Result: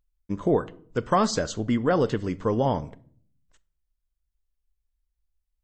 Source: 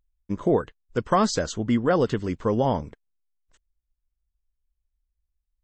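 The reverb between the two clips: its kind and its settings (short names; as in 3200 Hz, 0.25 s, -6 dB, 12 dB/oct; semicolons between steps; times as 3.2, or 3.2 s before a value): shoebox room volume 640 m³, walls furnished, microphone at 0.39 m; gain -1 dB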